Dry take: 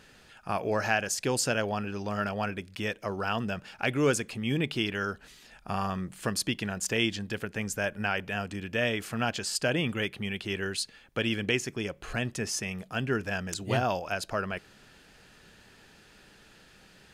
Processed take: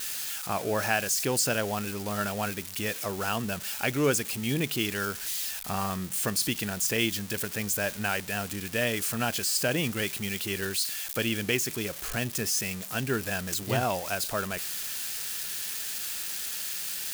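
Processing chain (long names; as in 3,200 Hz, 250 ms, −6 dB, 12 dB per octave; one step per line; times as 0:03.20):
spike at every zero crossing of −25 dBFS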